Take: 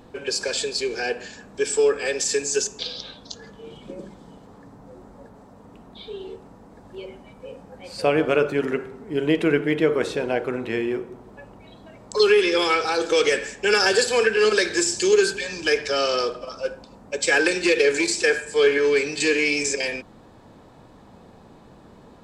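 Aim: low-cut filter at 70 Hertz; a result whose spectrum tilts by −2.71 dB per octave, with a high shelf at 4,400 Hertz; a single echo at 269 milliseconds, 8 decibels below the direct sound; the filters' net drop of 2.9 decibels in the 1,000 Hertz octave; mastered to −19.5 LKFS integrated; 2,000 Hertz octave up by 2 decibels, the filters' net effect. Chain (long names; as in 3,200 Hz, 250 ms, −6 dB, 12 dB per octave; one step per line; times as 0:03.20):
high-pass filter 70 Hz
parametric band 1,000 Hz −6 dB
parametric band 2,000 Hz +5 dB
high-shelf EQ 4,400 Hz −3 dB
single-tap delay 269 ms −8 dB
level +1.5 dB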